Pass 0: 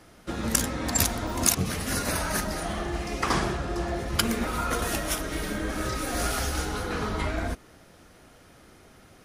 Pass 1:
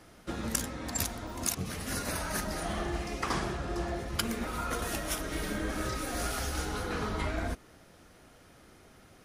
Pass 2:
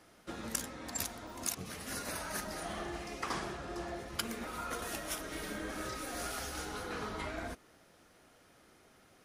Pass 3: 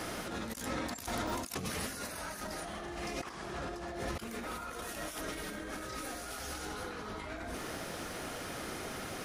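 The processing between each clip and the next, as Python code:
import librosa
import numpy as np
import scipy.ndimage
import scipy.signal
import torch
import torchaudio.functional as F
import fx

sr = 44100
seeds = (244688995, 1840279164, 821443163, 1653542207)

y1 = fx.rider(x, sr, range_db=5, speed_s=0.5)
y1 = F.gain(torch.from_numpy(y1), -6.0).numpy()
y2 = fx.low_shelf(y1, sr, hz=160.0, db=-9.5)
y2 = F.gain(torch.from_numpy(y2), -4.5).numpy()
y3 = fx.over_compress(y2, sr, threshold_db=-52.0, ratio=-1.0)
y3 = F.gain(torch.from_numpy(y3), 11.5).numpy()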